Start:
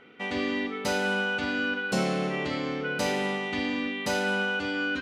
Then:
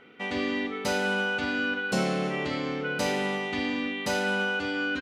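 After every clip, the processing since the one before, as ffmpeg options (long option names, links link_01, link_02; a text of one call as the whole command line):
ffmpeg -i in.wav -af "aecho=1:1:334:0.075" out.wav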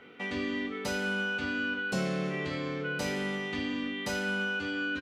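ffmpeg -i in.wav -filter_complex "[0:a]asplit=2[link_01][link_02];[link_02]adelay=21,volume=-6.5dB[link_03];[link_01][link_03]amix=inputs=2:normalize=0,acrossover=split=130[link_04][link_05];[link_05]acompressor=threshold=-41dB:ratio=1.5[link_06];[link_04][link_06]amix=inputs=2:normalize=0" out.wav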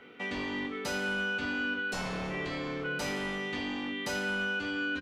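ffmpeg -i in.wav -filter_complex "[0:a]bandreject=frequency=50:width_type=h:width=6,bandreject=frequency=100:width_type=h:width=6,bandreject=frequency=150:width_type=h:width=6,bandreject=frequency=200:width_type=h:width=6,acrossover=split=830[link_01][link_02];[link_01]aeval=exprs='0.0251*(abs(mod(val(0)/0.0251+3,4)-2)-1)':channel_layout=same[link_03];[link_03][link_02]amix=inputs=2:normalize=0" out.wav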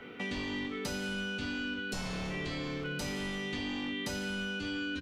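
ffmpeg -i in.wav -filter_complex "[0:a]lowshelf=frequency=160:gain=9,acrossover=split=400|2800[link_01][link_02][link_03];[link_01]acompressor=threshold=-42dB:ratio=4[link_04];[link_02]acompressor=threshold=-48dB:ratio=4[link_05];[link_03]acompressor=threshold=-45dB:ratio=4[link_06];[link_04][link_05][link_06]amix=inputs=3:normalize=0,volume=4dB" out.wav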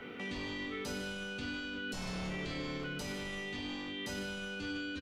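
ffmpeg -i in.wav -filter_complex "[0:a]alimiter=level_in=8.5dB:limit=-24dB:level=0:latency=1,volume=-8.5dB,asplit=2[link_01][link_02];[link_02]aecho=0:1:99.13|151.6:0.251|0.282[link_03];[link_01][link_03]amix=inputs=2:normalize=0,volume=1dB" out.wav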